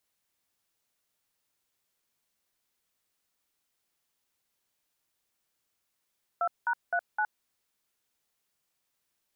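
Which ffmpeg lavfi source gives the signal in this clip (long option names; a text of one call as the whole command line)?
ffmpeg -f lavfi -i "aevalsrc='0.0422*clip(min(mod(t,0.258),0.066-mod(t,0.258))/0.002,0,1)*(eq(floor(t/0.258),0)*(sin(2*PI*697*mod(t,0.258))+sin(2*PI*1336*mod(t,0.258)))+eq(floor(t/0.258),1)*(sin(2*PI*941*mod(t,0.258))+sin(2*PI*1477*mod(t,0.258)))+eq(floor(t/0.258),2)*(sin(2*PI*697*mod(t,0.258))+sin(2*PI*1477*mod(t,0.258)))+eq(floor(t/0.258),3)*(sin(2*PI*852*mod(t,0.258))+sin(2*PI*1477*mod(t,0.258))))':duration=1.032:sample_rate=44100" out.wav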